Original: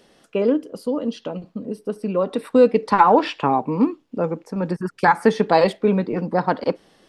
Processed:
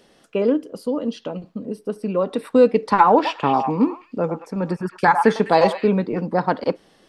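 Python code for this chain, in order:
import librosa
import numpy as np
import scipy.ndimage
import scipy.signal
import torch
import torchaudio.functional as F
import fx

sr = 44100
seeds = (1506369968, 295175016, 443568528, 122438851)

y = fx.echo_stepped(x, sr, ms=102, hz=940.0, octaves=1.4, feedback_pct=70, wet_db=-4, at=(3.24, 5.86), fade=0.02)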